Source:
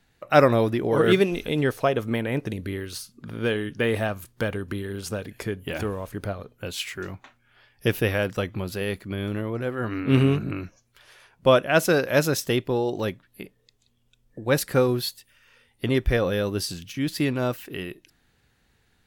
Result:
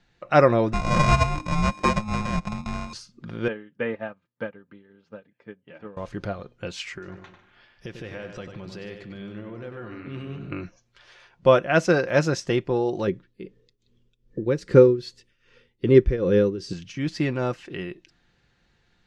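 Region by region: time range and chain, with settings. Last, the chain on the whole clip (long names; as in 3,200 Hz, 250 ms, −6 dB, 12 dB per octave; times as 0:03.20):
0:00.73–0:02.93: samples sorted by size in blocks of 32 samples + frequency shifter −320 Hz
0:03.48–0:05.97: band-pass filter 180–2,300 Hz + notch comb filter 360 Hz + expander for the loud parts 2.5 to 1, over −36 dBFS
0:06.98–0:10.52: downward compressor 3 to 1, threshold −38 dBFS + feedback echo with a low-pass in the loop 96 ms, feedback 30%, low-pass 4,000 Hz, level −6.5 dB + feedback echo with a swinging delay time 145 ms, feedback 35%, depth 98 cents, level −15 dB
0:13.07–0:16.73: low shelf with overshoot 540 Hz +6.5 dB, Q 3 + notch filter 760 Hz, Q 15 + shaped tremolo triangle 2.5 Hz, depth 85%
whole clip: low-pass filter 6,300 Hz 24 dB per octave; dynamic equaliser 3,600 Hz, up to −7 dB, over −48 dBFS, Q 1.9; comb filter 5.7 ms, depth 33%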